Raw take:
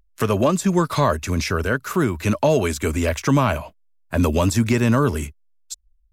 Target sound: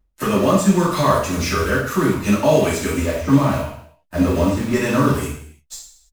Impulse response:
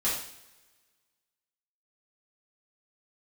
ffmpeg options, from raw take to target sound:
-filter_complex "[0:a]asettb=1/sr,asplit=3[a][b][c];[a]atrim=end=3.004[d];[b]atrim=start=3:end=4.73,asetpts=PTS-STARTPTS,afade=t=in:d=0.004:c=qsin,afade=t=out:st=1.726:d=0.004:c=qsin,deesser=0.95[e];[c]atrim=start=4.726[f];[d][e]acrossfade=d=0.004:c1=hsin:c2=qsin[g];[g][f]acrossfade=d=0.004:c1=qsin:c2=hsin,asplit=2[h][i];[i]acrusher=bits=5:dc=4:mix=0:aa=0.000001,volume=-4dB[j];[h][j]amix=inputs=2:normalize=0[k];[1:a]atrim=start_sample=2205,afade=t=out:st=0.41:d=0.01,atrim=end_sample=18522[l];[k][l]afir=irnorm=-1:irlink=0,volume=-10dB"

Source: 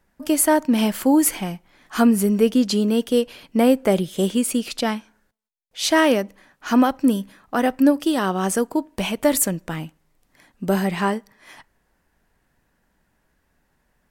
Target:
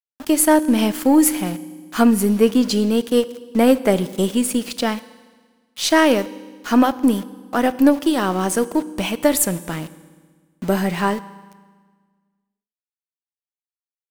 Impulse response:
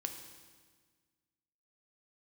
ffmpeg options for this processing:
-filter_complex "[0:a]aeval=exprs='0.562*(cos(1*acos(clip(val(0)/0.562,-1,1)))-cos(1*PI/2))+0.0355*(cos(3*acos(clip(val(0)/0.562,-1,1)))-cos(3*PI/2))+0.00891*(cos(8*acos(clip(val(0)/0.562,-1,1)))-cos(8*PI/2))':c=same,aeval=exprs='val(0)*gte(abs(val(0)),0.0168)':c=same,asplit=2[a][b];[1:a]atrim=start_sample=2205[c];[b][c]afir=irnorm=-1:irlink=0,volume=-5.5dB[d];[a][d]amix=inputs=2:normalize=0"

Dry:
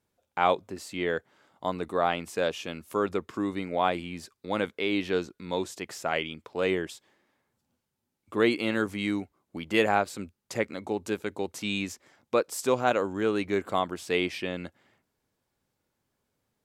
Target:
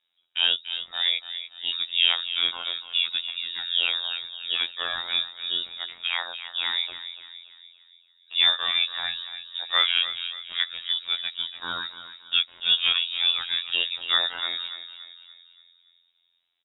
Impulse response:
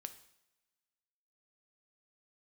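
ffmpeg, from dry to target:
-filter_complex "[0:a]asplit=2[a][b];[b]adelay=287,lowpass=f=2.7k:p=1,volume=-10.5dB,asplit=2[c][d];[d]adelay=287,lowpass=f=2.7k:p=1,volume=0.51,asplit=2[e][f];[f]adelay=287,lowpass=f=2.7k:p=1,volume=0.51,asplit=2[g][h];[h]adelay=287,lowpass=f=2.7k:p=1,volume=0.51,asplit=2[i][j];[j]adelay=287,lowpass=f=2.7k:p=1,volume=0.51,asplit=2[k][l];[l]adelay=287,lowpass=f=2.7k:p=1,volume=0.51[m];[a][c][e][g][i][k][m]amix=inputs=7:normalize=0,afftfilt=real='hypot(re,im)*cos(PI*b)':imag='0':win_size=2048:overlap=0.75,lowpass=f=3.3k:t=q:w=0.5098,lowpass=f=3.3k:t=q:w=0.6013,lowpass=f=3.3k:t=q:w=0.9,lowpass=f=3.3k:t=q:w=2.563,afreqshift=-3900,volume=5.5dB"

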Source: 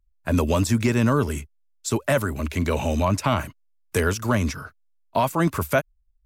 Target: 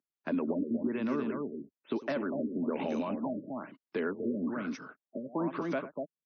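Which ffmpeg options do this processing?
-af "alimiter=limit=-18dB:level=0:latency=1:release=227,highshelf=f=5.5k:g=-8,aecho=1:1:100|242:0.133|0.531,acompressor=threshold=-25dB:ratio=6,highpass=f=200:w=0.5412,highpass=f=200:w=1.3066,equalizer=f=280:w=1.1:g=7,afftfilt=real='re*lt(b*sr/1024,580*pow(6600/580,0.5+0.5*sin(2*PI*1.1*pts/sr)))':imag='im*lt(b*sr/1024,580*pow(6600/580,0.5+0.5*sin(2*PI*1.1*pts/sr)))':win_size=1024:overlap=0.75,volume=-4.5dB"

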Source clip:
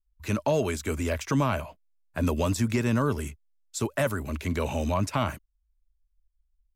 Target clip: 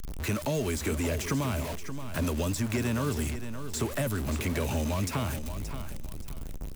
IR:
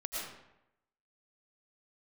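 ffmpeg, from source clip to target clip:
-filter_complex "[0:a]aeval=exprs='val(0)+0.5*0.0282*sgn(val(0))':c=same,acrossover=split=400|2500|6700[a][b][c][d];[a]acompressor=threshold=-30dB:ratio=4[e];[b]acompressor=threshold=-38dB:ratio=4[f];[c]acompressor=threshold=-44dB:ratio=4[g];[d]acompressor=threshold=-40dB:ratio=4[h];[e][f][g][h]amix=inputs=4:normalize=0,asplit=2[i][j];[j]aecho=0:1:576|1152|1728:0.316|0.0822|0.0214[k];[i][k]amix=inputs=2:normalize=0,volume=1.5dB"

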